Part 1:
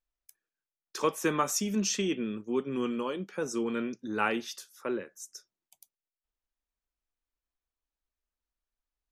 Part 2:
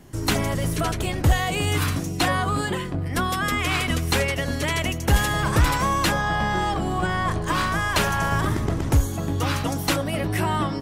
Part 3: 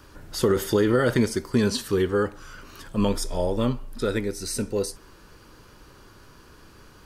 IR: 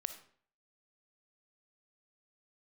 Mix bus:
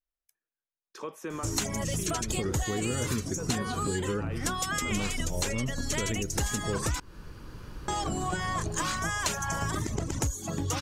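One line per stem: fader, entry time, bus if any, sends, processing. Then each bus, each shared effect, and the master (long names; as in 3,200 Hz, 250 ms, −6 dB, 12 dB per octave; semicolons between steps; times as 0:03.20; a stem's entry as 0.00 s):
−4.0 dB, 0.00 s, no send, high-shelf EQ 3,100 Hz −8.5 dB; brickwall limiter −23 dBFS, peak gain reduction 7.5 dB
−2.0 dB, 1.30 s, muted 0:07.00–0:07.88, no send, reverb reduction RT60 0.8 s; parametric band 6,800 Hz +14.5 dB 0.77 octaves
−11.0 dB, 1.95 s, no send, bass and treble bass +9 dB, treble −3 dB; automatic gain control gain up to 13 dB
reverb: not used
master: downward compressor 6 to 1, threshold −27 dBFS, peak gain reduction 12.5 dB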